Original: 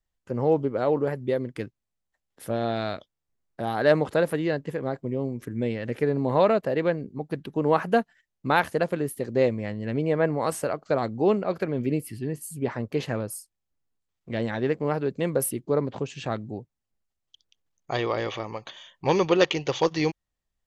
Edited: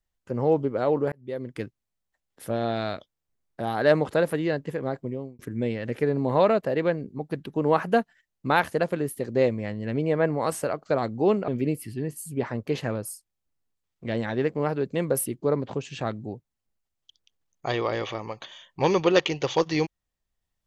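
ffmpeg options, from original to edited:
-filter_complex "[0:a]asplit=4[s0][s1][s2][s3];[s0]atrim=end=1.12,asetpts=PTS-STARTPTS,afade=t=out:st=1.116:d=0.004:c=hsin[s4];[s1]atrim=start=1.12:end=5.39,asetpts=PTS-STARTPTS,afade=t=in:d=0.48,afade=t=out:st=3.9:d=0.37[s5];[s2]atrim=start=5.39:end=11.482,asetpts=PTS-STARTPTS,afade=t=in:d=0.004:c=hsin[s6];[s3]atrim=start=11.728[s7];[s4][s5][s6]concat=n=3:v=0:a=1[s8];[s8][s7]acrossfade=d=0.004:c1=hsin:c2=hsin"

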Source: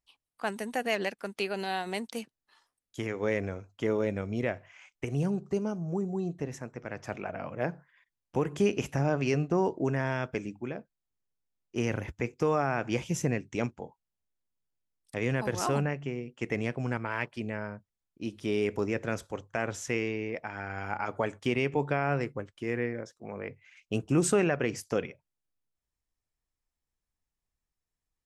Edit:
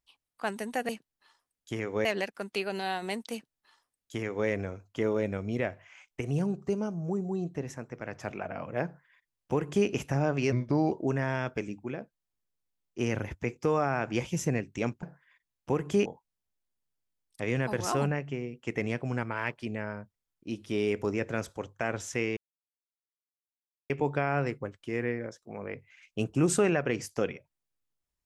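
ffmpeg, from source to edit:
-filter_complex "[0:a]asplit=9[s0][s1][s2][s3][s4][s5][s6][s7][s8];[s0]atrim=end=0.892[s9];[s1]atrim=start=2.158:end=3.322[s10];[s2]atrim=start=0.888:end=9.364[s11];[s3]atrim=start=9.36:end=9.69,asetpts=PTS-STARTPTS,asetrate=36603,aresample=44100[s12];[s4]atrim=start=9.686:end=13.802[s13];[s5]atrim=start=7.688:end=8.722[s14];[s6]atrim=start=13.798:end=20.11,asetpts=PTS-STARTPTS,afade=t=out:st=6.308:d=0.004:c=hsin[s15];[s7]atrim=start=20.11:end=21.64,asetpts=PTS-STARTPTS,volume=0[s16];[s8]atrim=start=21.64,asetpts=PTS-STARTPTS,afade=t=in:d=0.004:c=hsin[s17];[s9][s10]acrossfade=d=0.004:c1=hsin:c2=hsin[s18];[s18][s11]acrossfade=d=0.004:c1=hsin:c2=hsin[s19];[s19][s12]acrossfade=d=0.004:c1=hsin:c2=hsin[s20];[s20][s13]acrossfade=d=0.004:c1=hsin:c2=hsin[s21];[s21][s14]acrossfade=d=0.004:c1=hsin:c2=hsin[s22];[s15][s16][s17]concat=n=3:v=0:a=1[s23];[s22][s23]acrossfade=d=0.004:c1=hsin:c2=hsin"

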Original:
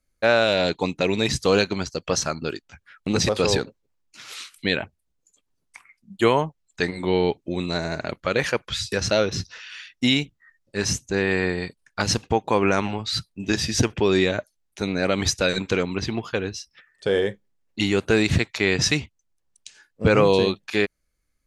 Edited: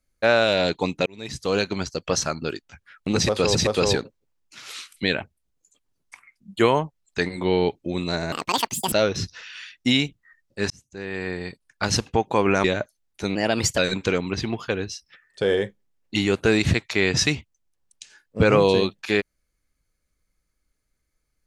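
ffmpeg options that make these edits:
-filter_complex "[0:a]asplit=9[s0][s1][s2][s3][s4][s5][s6][s7][s8];[s0]atrim=end=1.06,asetpts=PTS-STARTPTS,afade=t=out:st=1.056:d=0.004:c=hsin[s9];[s1]atrim=start=1.06:end=3.552,asetpts=PTS-STARTPTS,afade=t=in:d=0.77[s10];[s2]atrim=start=3.168:end=7.944[s11];[s3]atrim=start=7.94:end=9.09,asetpts=PTS-STARTPTS,asetrate=84231,aresample=44100,atrim=end_sample=26552,asetpts=PTS-STARTPTS[s12];[s4]atrim=start=9.086:end=10.87,asetpts=PTS-STARTPTS,afade=t=out:st=1.78:d=0.004:c=hsin[s13];[s5]atrim=start=10.87:end=12.812,asetpts=PTS-STARTPTS,afade=t=in:d=1.17[s14];[s6]atrim=start=14.218:end=14.934[s15];[s7]atrim=start=14.93:end=15.43,asetpts=PTS-STARTPTS,asetrate=51156,aresample=44100[s16];[s8]atrim=start=15.426[s17];[s9][s10]concat=n=2:v=0:a=1[s18];[s18][s11]acrossfade=d=0.004:c1=hsin:c2=hsin[s19];[s19][s12]acrossfade=d=0.004:c1=hsin:c2=hsin[s20];[s13][s14]concat=n=2:v=0:a=1[s21];[s20][s21]acrossfade=d=0.004:c1=hsin:c2=hsin[s22];[s22][s15]acrossfade=d=0.004:c1=hsin:c2=hsin[s23];[s23][s16]acrossfade=d=0.004:c1=hsin:c2=hsin[s24];[s24][s17]acrossfade=d=0.004:c1=hsin:c2=hsin"

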